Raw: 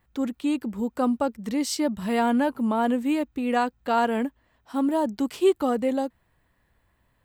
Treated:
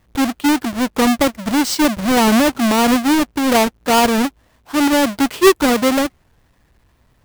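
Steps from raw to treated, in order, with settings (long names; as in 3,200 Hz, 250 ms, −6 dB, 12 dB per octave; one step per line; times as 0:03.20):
each half-wave held at its own peak
wow of a warped record 45 rpm, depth 160 cents
level +5.5 dB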